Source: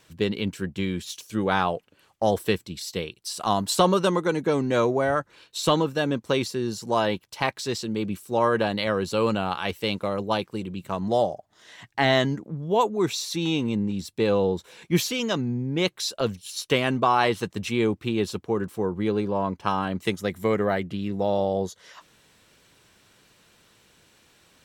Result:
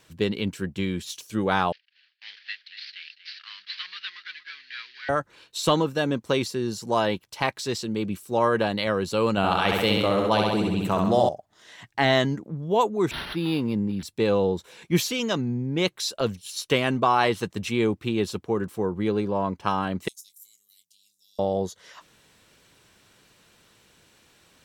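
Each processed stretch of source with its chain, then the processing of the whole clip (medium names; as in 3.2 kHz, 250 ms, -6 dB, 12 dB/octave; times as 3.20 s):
1.72–5.09 s: CVSD coder 32 kbps + elliptic band-pass 1.7–4.6 kHz, stop band 50 dB + delay 236 ms -12.5 dB
9.37–11.29 s: flutter echo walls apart 11.4 m, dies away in 0.91 s + level flattener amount 50%
13.11–14.03 s: high-pass 51 Hz + decimation joined by straight lines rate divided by 6×
20.08–21.39 s: inverse Chebyshev high-pass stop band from 1.7 kHz, stop band 60 dB + treble shelf 11 kHz +4.5 dB + doubling 24 ms -10.5 dB
whole clip: none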